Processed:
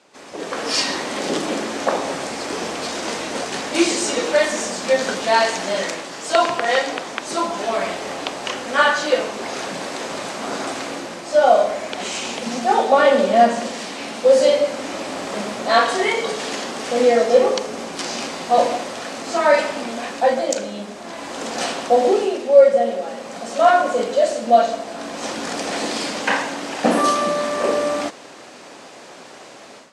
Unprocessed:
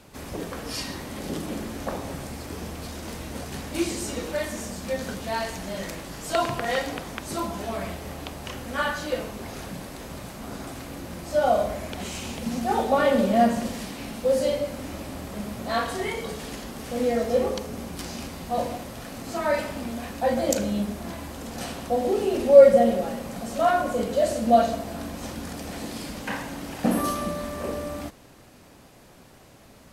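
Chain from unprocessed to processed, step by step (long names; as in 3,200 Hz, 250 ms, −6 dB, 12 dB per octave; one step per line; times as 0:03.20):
high-pass filter 370 Hz 12 dB per octave
automatic gain control gain up to 15 dB
low-pass filter 8,100 Hz 24 dB per octave
level −1 dB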